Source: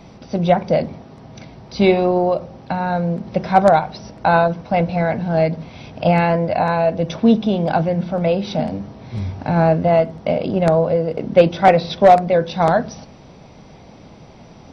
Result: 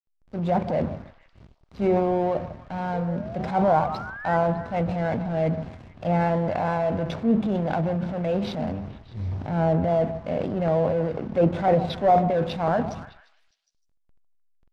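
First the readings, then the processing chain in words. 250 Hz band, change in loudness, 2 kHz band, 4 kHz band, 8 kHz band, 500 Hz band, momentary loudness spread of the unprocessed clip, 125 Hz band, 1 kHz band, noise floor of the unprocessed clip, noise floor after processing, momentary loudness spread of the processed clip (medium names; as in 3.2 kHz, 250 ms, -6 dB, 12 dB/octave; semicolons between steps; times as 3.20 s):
-6.0 dB, -7.5 dB, -9.5 dB, -10.5 dB, no reading, -8.0 dB, 12 LU, -5.5 dB, -8.0 dB, -43 dBFS, -69 dBFS, 11 LU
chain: low-pass that closes with the level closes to 1.3 kHz, closed at -9 dBFS; peaking EQ 85 Hz +5.5 dB 0.47 oct; transient shaper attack -6 dB, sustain +7 dB; hysteresis with a dead band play -25.5 dBFS; painted sound rise, 2.93–4.37 s, 450–2000 Hz -31 dBFS; distance through air 58 m; repeats whose band climbs or falls 152 ms, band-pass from 870 Hz, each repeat 0.7 oct, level -10.5 dB; trim -6.5 dB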